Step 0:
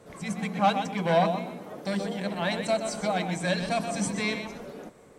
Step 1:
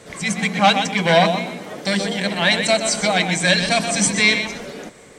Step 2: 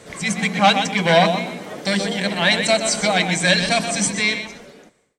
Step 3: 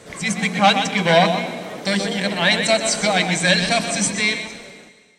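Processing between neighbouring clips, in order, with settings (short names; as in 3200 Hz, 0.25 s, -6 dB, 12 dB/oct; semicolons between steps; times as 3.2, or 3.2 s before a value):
band shelf 3900 Hz +9 dB 2.7 oct; notch 2600 Hz, Q 26; gain +7.5 dB
ending faded out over 1.53 s
digital reverb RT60 1.8 s, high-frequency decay 1×, pre-delay 90 ms, DRR 15 dB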